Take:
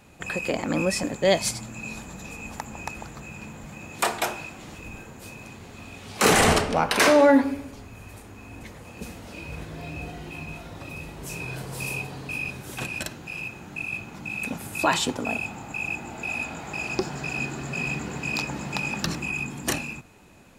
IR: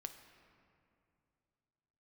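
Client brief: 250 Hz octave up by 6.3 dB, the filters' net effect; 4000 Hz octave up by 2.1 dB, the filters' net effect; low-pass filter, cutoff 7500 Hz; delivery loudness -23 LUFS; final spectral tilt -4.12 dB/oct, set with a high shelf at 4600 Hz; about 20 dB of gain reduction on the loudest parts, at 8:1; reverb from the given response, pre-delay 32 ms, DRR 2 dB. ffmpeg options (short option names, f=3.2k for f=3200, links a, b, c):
-filter_complex "[0:a]lowpass=7.5k,equalizer=f=250:t=o:g=7.5,equalizer=f=4k:t=o:g=6.5,highshelf=f=4.6k:g=-7,acompressor=threshold=-29dB:ratio=8,asplit=2[a][b];[1:a]atrim=start_sample=2205,adelay=32[c];[b][c]afir=irnorm=-1:irlink=0,volume=2dB[d];[a][d]amix=inputs=2:normalize=0,volume=9dB"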